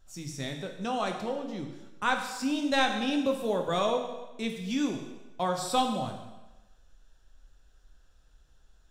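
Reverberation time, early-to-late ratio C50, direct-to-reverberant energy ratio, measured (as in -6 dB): 1.0 s, 6.5 dB, 3.0 dB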